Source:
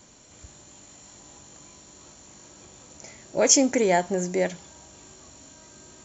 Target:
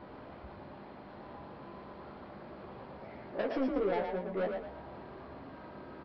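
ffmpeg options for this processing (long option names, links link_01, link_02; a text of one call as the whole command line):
ffmpeg -i in.wav -filter_complex "[0:a]aeval=exprs='val(0)+0.5*0.0473*sgn(val(0))':channel_layout=same,agate=range=-20dB:threshold=-20dB:ratio=16:detection=peak,lowpass=1100,lowshelf=frequency=220:gain=-8.5,acompressor=threshold=-36dB:ratio=10,aresample=11025,asoftclip=type=tanh:threshold=-38dB,aresample=44100,asplit=2[link_01][link_02];[link_02]adelay=15,volume=-4dB[link_03];[link_01][link_03]amix=inputs=2:normalize=0,asplit=6[link_04][link_05][link_06][link_07][link_08][link_09];[link_05]adelay=114,afreqshift=33,volume=-5dB[link_10];[link_06]adelay=228,afreqshift=66,volume=-13.6dB[link_11];[link_07]adelay=342,afreqshift=99,volume=-22.3dB[link_12];[link_08]adelay=456,afreqshift=132,volume=-30.9dB[link_13];[link_09]adelay=570,afreqshift=165,volume=-39.5dB[link_14];[link_04][link_10][link_11][link_12][link_13][link_14]amix=inputs=6:normalize=0,volume=9dB" out.wav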